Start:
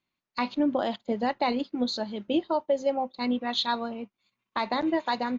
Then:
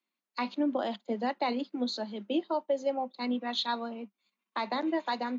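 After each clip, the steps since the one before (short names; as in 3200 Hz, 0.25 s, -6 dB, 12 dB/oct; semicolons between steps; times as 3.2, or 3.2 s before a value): steep high-pass 190 Hz 96 dB/oct; gain -4 dB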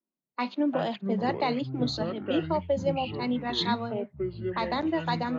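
low-pass opened by the level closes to 520 Hz, open at -28.5 dBFS; echoes that change speed 0.158 s, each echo -7 st, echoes 3, each echo -6 dB; gain +2.5 dB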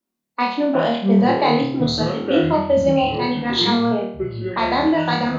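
flutter echo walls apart 4.4 m, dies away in 0.57 s; gain +7.5 dB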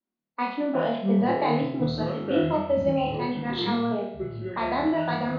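air absorption 240 m; resonator 51 Hz, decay 1.1 s, harmonics all, mix 70%; gain +2 dB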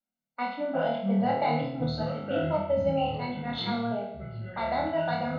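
reverb RT60 0.60 s, pre-delay 3 ms, DRR 17 dB; gain -5.5 dB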